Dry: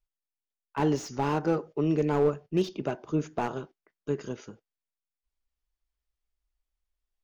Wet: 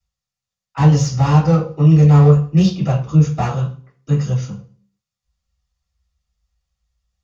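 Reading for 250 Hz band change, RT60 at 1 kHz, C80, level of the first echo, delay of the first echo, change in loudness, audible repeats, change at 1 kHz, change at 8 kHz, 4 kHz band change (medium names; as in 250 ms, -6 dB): +13.5 dB, 0.40 s, 14.0 dB, no echo, no echo, +14.5 dB, no echo, +9.0 dB, no reading, +12.0 dB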